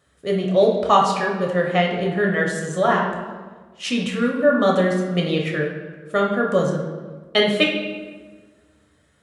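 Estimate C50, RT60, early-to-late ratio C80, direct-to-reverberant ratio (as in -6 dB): 4.0 dB, 1.5 s, 6.5 dB, -1.0 dB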